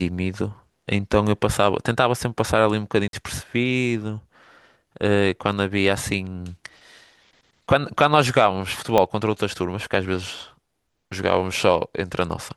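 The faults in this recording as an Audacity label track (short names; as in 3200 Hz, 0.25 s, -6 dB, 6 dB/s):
3.080000	3.130000	gap 52 ms
8.980000	8.980000	pop -5 dBFS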